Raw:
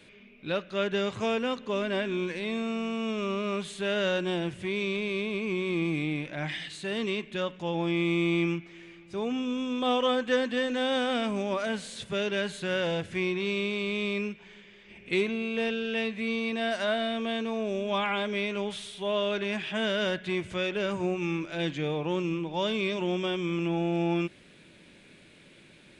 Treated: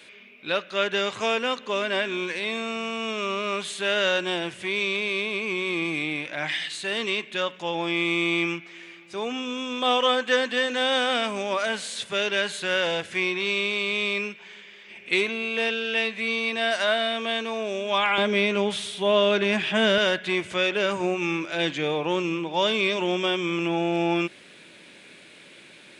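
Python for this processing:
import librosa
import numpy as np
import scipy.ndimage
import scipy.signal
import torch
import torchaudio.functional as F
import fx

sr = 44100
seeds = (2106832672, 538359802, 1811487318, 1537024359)

y = fx.highpass(x, sr, hz=fx.steps((0.0, 860.0), (18.18, 140.0), (19.98, 510.0)), slope=6)
y = F.gain(torch.from_numpy(y), 8.5).numpy()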